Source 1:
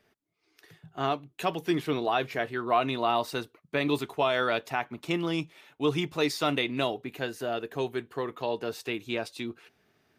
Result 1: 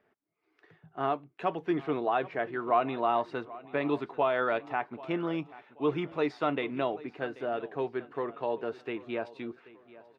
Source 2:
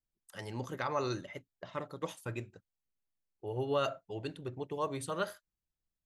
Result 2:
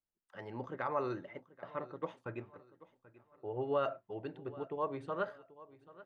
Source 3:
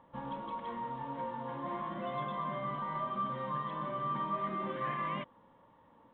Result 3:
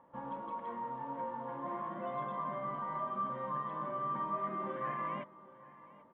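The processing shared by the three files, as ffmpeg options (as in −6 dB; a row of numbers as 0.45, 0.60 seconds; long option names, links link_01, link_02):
-af "lowpass=1700,lowshelf=frequency=140:gain=-12,aecho=1:1:785|1570|2355:0.112|0.0426|0.0162"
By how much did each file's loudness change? −2.0, −2.0, −1.5 LU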